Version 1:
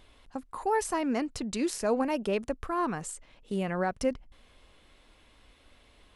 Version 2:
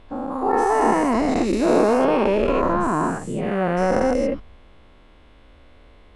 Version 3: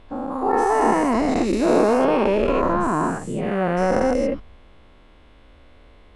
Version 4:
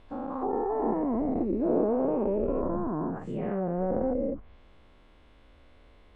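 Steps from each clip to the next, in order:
every event in the spectrogram widened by 480 ms; low-pass 1.2 kHz 6 dB/octave; trim +4.5 dB
no audible change
low-pass that closes with the level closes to 610 Hz, closed at -18 dBFS; trim -7 dB

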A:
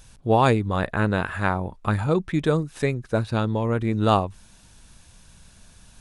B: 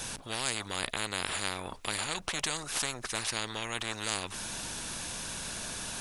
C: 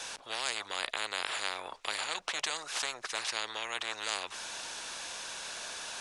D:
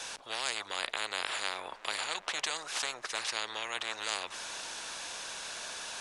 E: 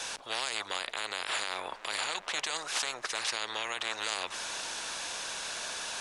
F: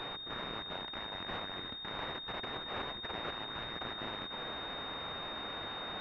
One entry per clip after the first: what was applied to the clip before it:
spectrum-flattening compressor 10:1; trim -7 dB
three-band isolator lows -20 dB, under 420 Hz, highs -17 dB, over 8 kHz
feedback echo behind a low-pass 384 ms, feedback 75%, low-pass 1.8 kHz, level -18 dB
peak limiter -23 dBFS, peak gain reduction 9 dB; trim +3.5 dB
bit-reversed sample order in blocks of 64 samples; class-D stage that switches slowly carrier 3.7 kHz; trim -1 dB

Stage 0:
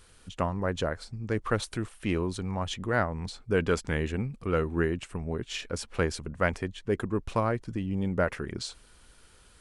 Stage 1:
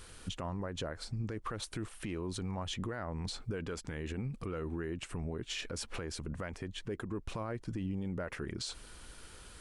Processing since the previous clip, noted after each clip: peaking EQ 320 Hz +3 dB 0.22 oct; compression 3:1, threshold -38 dBFS, peak gain reduction 13.5 dB; peak limiter -34 dBFS, peak gain reduction 11 dB; trim +5 dB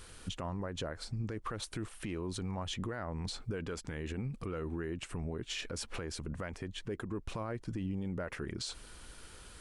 no audible change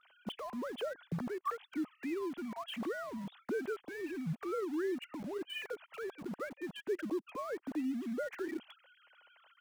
formants replaced by sine waves; in parallel at -10.5 dB: bit crusher 7-bit; on the sum: trim -2.5 dB

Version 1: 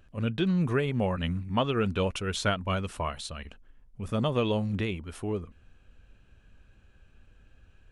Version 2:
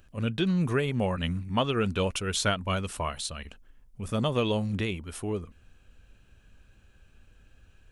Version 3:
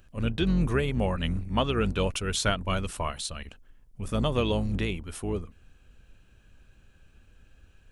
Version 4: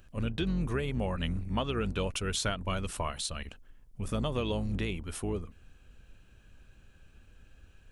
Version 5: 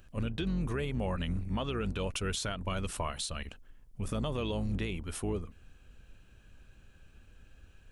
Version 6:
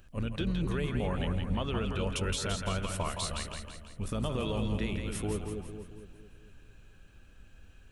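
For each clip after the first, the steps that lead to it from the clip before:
treble shelf 5 kHz +9.5 dB
octave divider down 2 oct, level -3 dB
compression 2.5:1, threshold -30 dBFS, peak gain reduction 7 dB
peak limiter -24.5 dBFS, peak gain reduction 6 dB
two-band feedback delay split 560 Hz, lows 226 ms, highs 167 ms, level -5 dB

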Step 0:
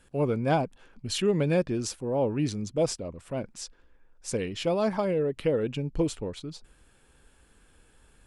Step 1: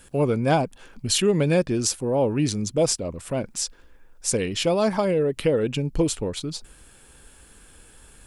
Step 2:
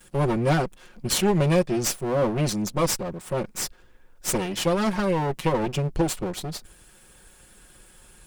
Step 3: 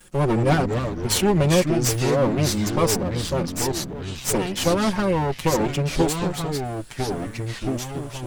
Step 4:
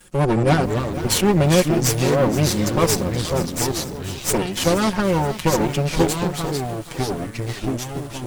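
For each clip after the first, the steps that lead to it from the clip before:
treble shelf 5.6 kHz +10 dB; in parallel at -1.5 dB: compression, threshold -33 dBFS, peak gain reduction 13 dB; on the sum: trim +2.5 dB
comb filter that takes the minimum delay 5.5 ms
ever faster or slower copies 116 ms, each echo -4 st, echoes 3, each echo -6 dB; trim +2 dB
Chebyshev shaper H 3 -21 dB, 8 -26 dB, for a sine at -6 dBFS; bit-crushed delay 475 ms, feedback 55%, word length 6-bit, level -13 dB; trim +4 dB

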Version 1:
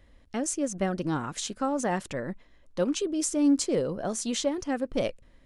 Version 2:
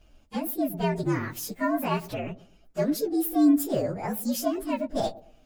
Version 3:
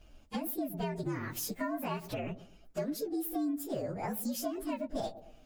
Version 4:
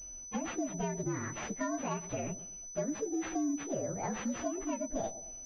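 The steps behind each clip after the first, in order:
frequency axis rescaled in octaves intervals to 119%; feedback echo behind a low-pass 111 ms, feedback 30%, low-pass 790 Hz, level -16.5 dB; trim +4 dB
compression 5:1, threshold -33 dBFS, peak gain reduction 15.5 dB
class-D stage that switches slowly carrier 6 kHz

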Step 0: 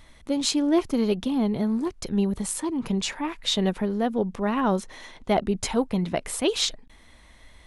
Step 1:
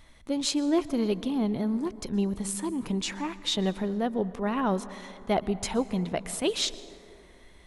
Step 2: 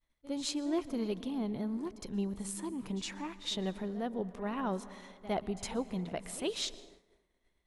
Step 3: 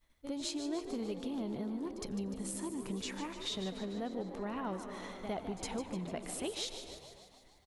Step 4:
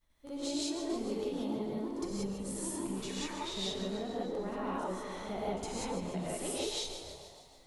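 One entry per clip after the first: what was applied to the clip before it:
plate-style reverb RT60 2.8 s, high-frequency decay 0.35×, pre-delay 105 ms, DRR 15.5 dB; trim -3.5 dB
pre-echo 61 ms -16 dB; expander -41 dBFS; trim -8 dB
compression 2.5:1, threshold -51 dBFS, peak gain reduction 15 dB; on a send: frequency-shifting echo 149 ms, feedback 62%, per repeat +62 Hz, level -10 dB; on the sum: trim +8.5 dB
peaking EQ 2.3 kHz -2.5 dB 1.4 oct; gated-style reverb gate 210 ms rising, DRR -6.5 dB; trim -3.5 dB

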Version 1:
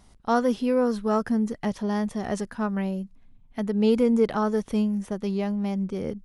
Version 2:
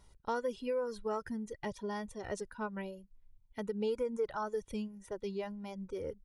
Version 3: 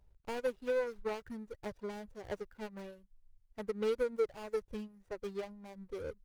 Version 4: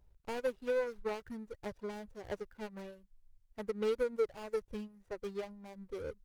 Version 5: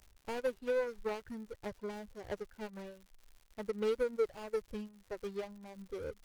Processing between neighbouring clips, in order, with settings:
reverb removal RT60 1.9 s; comb 2.1 ms, depth 51%; compression 3:1, threshold -24 dBFS, peak gain reduction 7.5 dB; trim -8 dB
median filter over 41 samples; peaking EQ 230 Hz -7.5 dB 2 oct; upward expansion 1.5:1, over -53 dBFS; trim +7.5 dB
wow and flutter 17 cents
crackle 160 per s -50 dBFS

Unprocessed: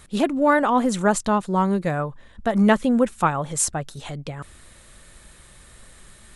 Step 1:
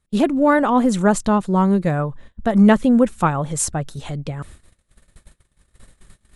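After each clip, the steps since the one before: gate -44 dBFS, range -28 dB; bass shelf 400 Hz +7 dB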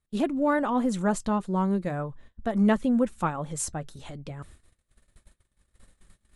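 flange 0.42 Hz, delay 2.6 ms, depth 1.3 ms, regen -74%; trim -5 dB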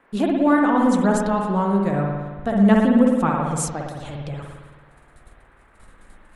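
band noise 180–1900 Hz -63 dBFS; spring tank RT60 1.4 s, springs 55 ms, chirp 65 ms, DRR 0 dB; trim +4 dB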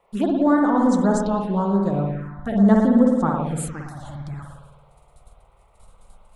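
touch-sensitive phaser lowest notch 270 Hz, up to 2.6 kHz, full sweep at -15.5 dBFS

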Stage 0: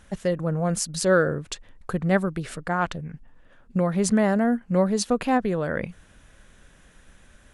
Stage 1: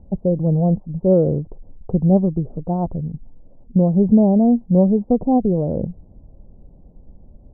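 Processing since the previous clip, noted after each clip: steep low-pass 850 Hz 48 dB/octave; bass shelf 490 Hz +12 dB; trim -1.5 dB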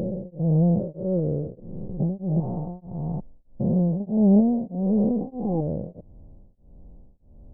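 spectrogram pixelated in time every 400 ms; tremolo of two beating tones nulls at 1.6 Hz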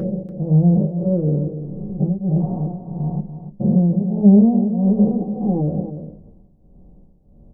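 delay 289 ms -10.5 dB; on a send at -2.5 dB: reverberation RT60 0.15 s, pre-delay 3 ms

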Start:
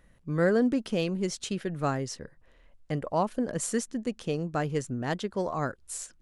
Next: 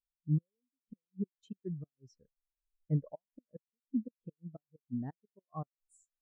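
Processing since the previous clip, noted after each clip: inverted gate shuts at -20 dBFS, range -31 dB; spectral contrast expander 2.5:1; trim -1 dB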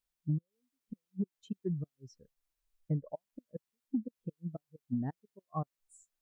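compression 6:1, threshold -36 dBFS, peak gain reduction 11 dB; trim +6.5 dB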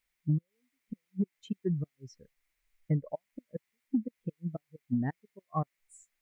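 peaking EQ 2.1 kHz +14 dB 0.57 oct; trim +4 dB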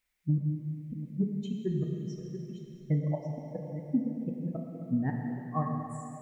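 chunks repeated in reverse 670 ms, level -11 dB; plate-style reverb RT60 3 s, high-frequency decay 1×, DRR 0.5 dB

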